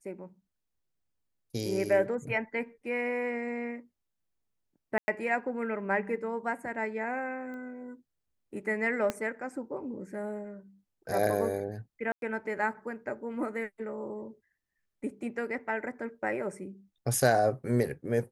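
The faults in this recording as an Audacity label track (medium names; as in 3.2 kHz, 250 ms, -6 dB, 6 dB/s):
4.980000	5.080000	dropout 100 ms
7.540000	7.540000	pop -34 dBFS
9.100000	9.100000	pop -16 dBFS
12.120000	12.220000	dropout 102 ms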